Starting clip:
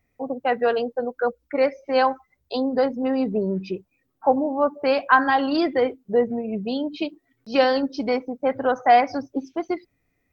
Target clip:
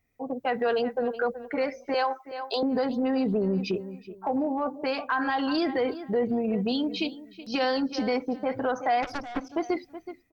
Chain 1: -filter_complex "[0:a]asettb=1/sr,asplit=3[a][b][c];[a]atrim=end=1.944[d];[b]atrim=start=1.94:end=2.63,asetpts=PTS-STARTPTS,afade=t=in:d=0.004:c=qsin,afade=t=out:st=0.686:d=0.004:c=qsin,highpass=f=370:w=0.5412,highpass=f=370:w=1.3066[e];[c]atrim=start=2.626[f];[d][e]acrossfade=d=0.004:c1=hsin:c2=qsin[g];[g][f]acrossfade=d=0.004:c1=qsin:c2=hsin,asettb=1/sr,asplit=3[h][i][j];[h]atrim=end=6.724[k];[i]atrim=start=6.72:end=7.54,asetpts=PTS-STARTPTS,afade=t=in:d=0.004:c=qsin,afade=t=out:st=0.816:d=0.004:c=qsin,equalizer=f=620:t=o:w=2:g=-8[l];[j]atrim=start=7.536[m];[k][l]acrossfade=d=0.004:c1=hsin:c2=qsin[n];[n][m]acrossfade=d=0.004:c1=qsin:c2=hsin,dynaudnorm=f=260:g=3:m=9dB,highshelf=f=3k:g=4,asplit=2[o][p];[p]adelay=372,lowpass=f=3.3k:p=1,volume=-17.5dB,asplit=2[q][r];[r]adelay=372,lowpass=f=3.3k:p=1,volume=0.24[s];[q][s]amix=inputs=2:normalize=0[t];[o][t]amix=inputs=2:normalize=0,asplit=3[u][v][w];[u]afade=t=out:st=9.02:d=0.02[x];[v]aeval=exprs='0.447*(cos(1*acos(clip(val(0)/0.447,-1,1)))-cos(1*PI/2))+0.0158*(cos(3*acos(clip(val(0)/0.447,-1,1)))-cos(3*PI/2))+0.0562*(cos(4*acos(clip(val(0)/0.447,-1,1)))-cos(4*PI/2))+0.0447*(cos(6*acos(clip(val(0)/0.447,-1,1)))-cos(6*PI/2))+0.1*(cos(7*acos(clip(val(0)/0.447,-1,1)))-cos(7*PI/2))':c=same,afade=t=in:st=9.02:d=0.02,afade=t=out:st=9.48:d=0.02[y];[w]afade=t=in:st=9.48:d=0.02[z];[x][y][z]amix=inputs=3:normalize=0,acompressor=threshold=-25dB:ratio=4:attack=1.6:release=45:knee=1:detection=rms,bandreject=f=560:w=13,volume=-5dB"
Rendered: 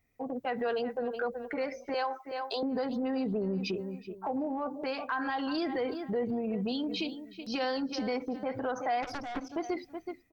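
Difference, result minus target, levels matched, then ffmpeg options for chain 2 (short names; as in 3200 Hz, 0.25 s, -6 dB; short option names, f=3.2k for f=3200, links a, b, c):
compressor: peak gain reduction +6 dB
-filter_complex "[0:a]asettb=1/sr,asplit=3[a][b][c];[a]atrim=end=1.944[d];[b]atrim=start=1.94:end=2.63,asetpts=PTS-STARTPTS,afade=t=in:d=0.004:c=qsin,afade=t=out:st=0.686:d=0.004:c=qsin,highpass=f=370:w=0.5412,highpass=f=370:w=1.3066[e];[c]atrim=start=2.626[f];[d][e]acrossfade=d=0.004:c1=hsin:c2=qsin[g];[g][f]acrossfade=d=0.004:c1=qsin:c2=hsin,asettb=1/sr,asplit=3[h][i][j];[h]atrim=end=6.724[k];[i]atrim=start=6.72:end=7.54,asetpts=PTS-STARTPTS,afade=t=in:d=0.004:c=qsin,afade=t=out:st=0.816:d=0.004:c=qsin,equalizer=f=620:t=o:w=2:g=-8[l];[j]atrim=start=7.536[m];[k][l]acrossfade=d=0.004:c1=hsin:c2=qsin[n];[n][m]acrossfade=d=0.004:c1=qsin:c2=hsin,dynaudnorm=f=260:g=3:m=9dB,highshelf=f=3k:g=4,asplit=2[o][p];[p]adelay=372,lowpass=f=3.3k:p=1,volume=-17.5dB,asplit=2[q][r];[r]adelay=372,lowpass=f=3.3k:p=1,volume=0.24[s];[q][s]amix=inputs=2:normalize=0[t];[o][t]amix=inputs=2:normalize=0,asplit=3[u][v][w];[u]afade=t=out:st=9.02:d=0.02[x];[v]aeval=exprs='0.447*(cos(1*acos(clip(val(0)/0.447,-1,1)))-cos(1*PI/2))+0.0158*(cos(3*acos(clip(val(0)/0.447,-1,1)))-cos(3*PI/2))+0.0562*(cos(4*acos(clip(val(0)/0.447,-1,1)))-cos(4*PI/2))+0.0447*(cos(6*acos(clip(val(0)/0.447,-1,1)))-cos(6*PI/2))+0.1*(cos(7*acos(clip(val(0)/0.447,-1,1)))-cos(7*PI/2))':c=same,afade=t=in:st=9.02:d=0.02,afade=t=out:st=9.48:d=0.02[y];[w]afade=t=in:st=9.48:d=0.02[z];[x][y][z]amix=inputs=3:normalize=0,acompressor=threshold=-17dB:ratio=4:attack=1.6:release=45:knee=1:detection=rms,bandreject=f=560:w=13,volume=-5dB"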